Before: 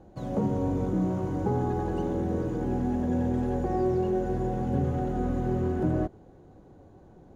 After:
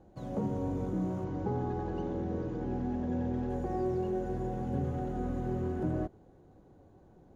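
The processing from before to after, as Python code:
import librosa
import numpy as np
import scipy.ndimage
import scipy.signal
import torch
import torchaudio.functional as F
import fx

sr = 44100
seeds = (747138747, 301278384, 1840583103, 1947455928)

y = fx.lowpass(x, sr, hz=5900.0, slope=24, at=(1.24, 3.5))
y = y * 10.0 ** (-6.0 / 20.0)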